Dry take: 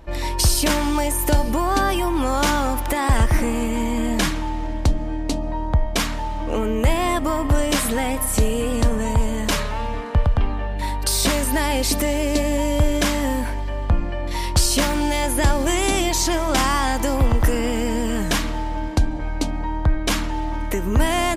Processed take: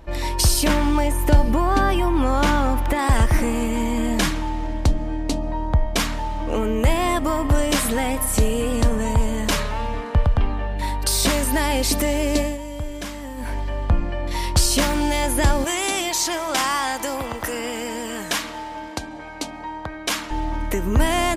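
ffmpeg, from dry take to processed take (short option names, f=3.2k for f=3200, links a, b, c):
-filter_complex "[0:a]asettb=1/sr,asplit=3[a][b][c];[a]atrim=end=0.664[d];[b]atrim=start=0.66:end=2.99,asetpts=PTS-STARTPTS,afade=t=in:d=0.004:c=qsin,afade=t=out:st=2.326:d=0.004:c=qsin,bass=f=250:g=4,treble=f=4k:g=-8[e];[c]atrim=start=2.986[f];[d][e]acrossfade=d=0.004:c1=hsin:c2=qsin[g];[g][f]acrossfade=d=0.004:c1=qsin:c2=hsin,asettb=1/sr,asplit=3[h][i][j];[h]atrim=end=15.644[k];[i]atrim=start=15.64:end=20.31,asetpts=PTS-STARTPTS,afade=t=in:d=0.004:c=qsin,afade=t=out:st=4.666:d=0.004:c=qsin,highpass=f=620:p=1[l];[j]atrim=start=20.306[m];[k][l]acrossfade=d=0.004:c1=hsin:c2=qsin[n];[n][m]acrossfade=d=0.004:c1=qsin:c2=hsin,asplit=3[o][p][q];[o]atrim=end=12.58,asetpts=PTS-STARTPTS,afade=t=out:st=12.4:d=0.18:silence=0.266073[r];[p]atrim=start=12.58:end=13.36,asetpts=PTS-STARTPTS,volume=-11.5dB[s];[q]atrim=start=13.36,asetpts=PTS-STARTPTS,afade=t=in:d=0.18:silence=0.266073[t];[r][s][t]concat=n=3:v=0:a=1"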